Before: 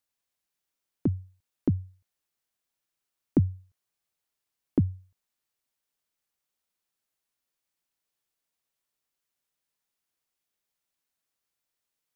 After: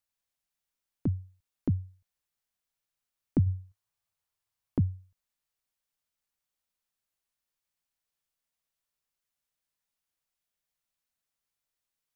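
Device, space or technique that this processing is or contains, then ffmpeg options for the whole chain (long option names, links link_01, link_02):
low shelf boost with a cut just above: -filter_complex "[0:a]asettb=1/sr,asplit=3[link_01][link_02][link_03];[link_01]atrim=end=3.464[link_04];[link_02]atrim=start=3.46:end=4.79,asetpts=PTS-STARTPTS,afade=type=in:duration=0.004:curve=qsin,afade=type=out:start_time=1.326:duration=0.004:curve=qsin,equalizer=frequency=100:width_type=o:width=0.67:gain=8,equalizer=frequency=250:width_type=o:width=0.67:gain=-3,equalizer=frequency=1000:width_type=o:width=0.67:gain=4[link_05];[link_03]atrim=start=4.786[link_06];[link_04][link_05]acrossfade=duration=0.004:curve1=hsin:curve2=qsin[link_07];[link_07][link_06]acrossfade=duration=0.004:curve1=qsin:curve2=hsin,lowshelf=frequency=68:gain=8,equalizer=frequency=350:width_type=o:width=0.8:gain=-4.5,volume=-3dB"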